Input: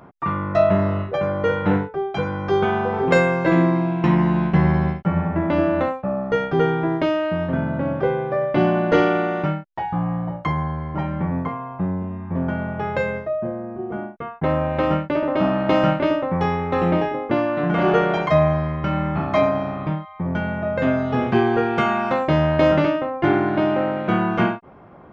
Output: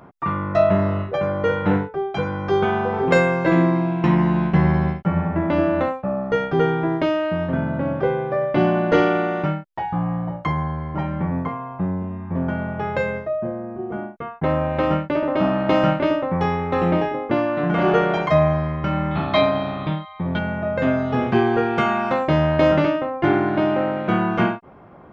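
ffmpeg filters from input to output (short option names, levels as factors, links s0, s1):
-filter_complex "[0:a]asettb=1/sr,asplit=3[s0][s1][s2];[s0]atrim=end=19.114[s3];[s1]atrim=start=19.11:end=20.39,asetpts=PTS-STARTPTS,afade=t=in:d=0.004:c=qsin,afade=t=out:st=1.276:d=0.004:c=qsin,lowpass=f=3800:t=q:w=6.5[s4];[s2]atrim=start=20.386[s5];[s3][s4]acrossfade=d=0.004:c1=hsin:c2=qsin[s6];[s6][s5]acrossfade=d=0.004:c1=qsin:c2=hsin"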